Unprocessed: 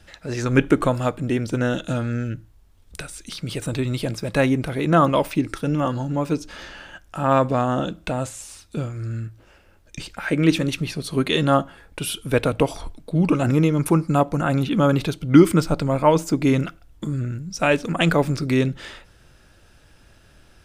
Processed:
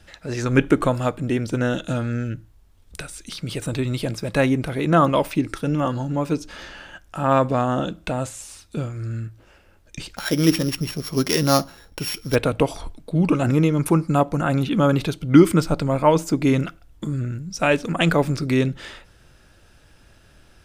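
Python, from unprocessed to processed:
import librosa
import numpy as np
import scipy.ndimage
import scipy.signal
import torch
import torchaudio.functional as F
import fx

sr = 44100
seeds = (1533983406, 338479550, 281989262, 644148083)

y = fx.sample_sort(x, sr, block=8, at=(10.16, 12.34), fade=0.02)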